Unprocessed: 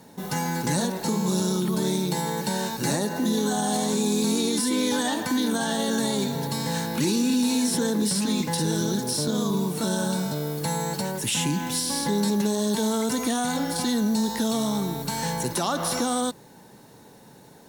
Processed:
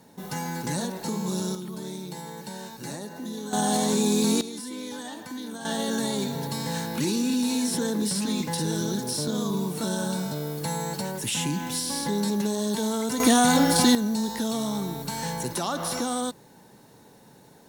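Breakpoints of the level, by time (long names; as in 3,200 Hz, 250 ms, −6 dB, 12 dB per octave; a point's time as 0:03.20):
−4.5 dB
from 0:01.55 −11 dB
from 0:03.53 +1 dB
from 0:04.41 −12 dB
from 0:05.65 −2.5 dB
from 0:13.20 +7 dB
from 0:13.95 −3 dB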